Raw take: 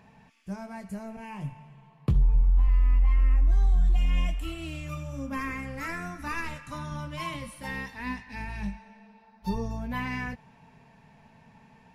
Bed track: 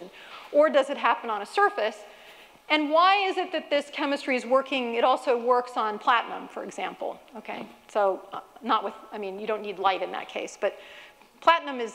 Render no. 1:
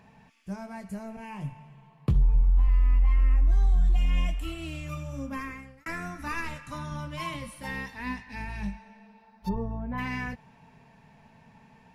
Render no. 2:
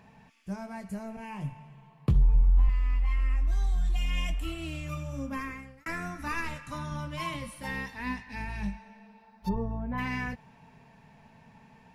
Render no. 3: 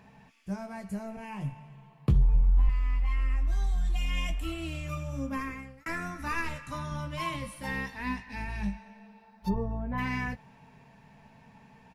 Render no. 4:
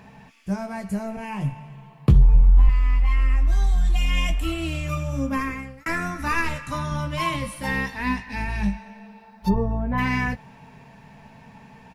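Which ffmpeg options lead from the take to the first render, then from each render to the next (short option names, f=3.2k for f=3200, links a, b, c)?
-filter_complex "[0:a]asplit=3[a][b][c];[a]afade=t=out:st=9.48:d=0.02[d];[b]lowpass=1.3k,afade=t=in:st=9.48:d=0.02,afade=t=out:st=9.97:d=0.02[e];[c]afade=t=in:st=9.97:d=0.02[f];[d][e][f]amix=inputs=3:normalize=0,asplit=2[g][h];[g]atrim=end=5.86,asetpts=PTS-STARTPTS,afade=t=out:st=5.21:d=0.65[i];[h]atrim=start=5.86,asetpts=PTS-STARTPTS,afade=t=in:d=0.004:c=hsin[j];[i][j]concat=n=2:v=0:a=1"
-filter_complex "[0:a]asettb=1/sr,asplit=3[a][b][c];[a]atrim=end=2.694[d];[b]atrim=start=2.69:end=4.3,asetpts=PTS-STARTPTS,afade=t=in:d=0.004:c=qsin,afade=t=out:st=1.606:d=0.004:c=qsin,tiltshelf=f=1.4k:g=-5.5[e];[c]atrim=start=4.296[f];[d][e]acrossfade=d=0.004:c1=hsin:c2=qsin[g];[g][f]acrossfade=d=0.004:c1=qsin:c2=hsin"
-filter_complex "[0:a]asplit=2[a][b];[b]adelay=15,volume=-12dB[c];[a][c]amix=inputs=2:normalize=0"
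-af "volume=8.5dB"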